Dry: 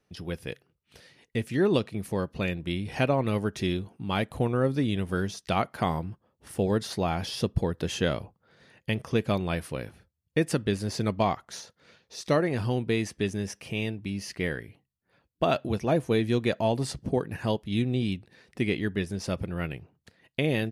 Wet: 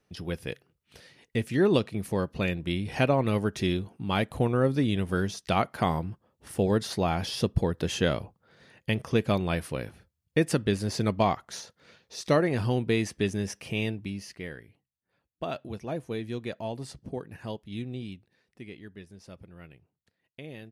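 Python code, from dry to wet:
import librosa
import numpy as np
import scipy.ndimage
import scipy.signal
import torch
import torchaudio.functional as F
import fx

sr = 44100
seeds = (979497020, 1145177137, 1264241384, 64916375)

y = fx.gain(x, sr, db=fx.line((13.95, 1.0), (14.43, -9.0), (17.93, -9.0), (18.62, -16.5)))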